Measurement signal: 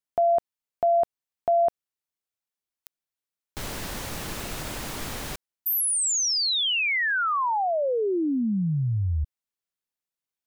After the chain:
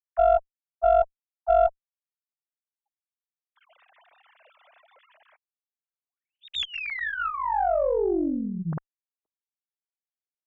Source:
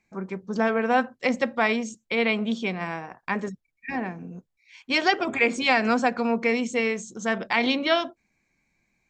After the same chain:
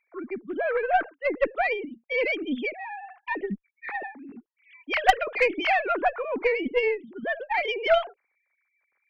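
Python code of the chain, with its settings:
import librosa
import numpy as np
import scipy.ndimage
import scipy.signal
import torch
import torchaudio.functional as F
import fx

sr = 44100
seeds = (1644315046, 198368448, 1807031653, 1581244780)

y = fx.sine_speech(x, sr)
y = fx.cheby_harmonics(y, sr, harmonics=(2, 3, 5, 6), levels_db=(-16, -19, -29, -38), full_scale_db=-7.0)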